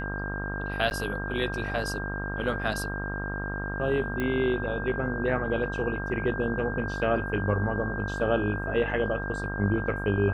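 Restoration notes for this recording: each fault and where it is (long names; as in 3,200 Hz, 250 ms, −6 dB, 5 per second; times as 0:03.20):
mains buzz 50 Hz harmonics 29 −34 dBFS
whistle 1,600 Hz −34 dBFS
0:00.90–0:00.91: drop-out 9.9 ms
0:04.20: click −18 dBFS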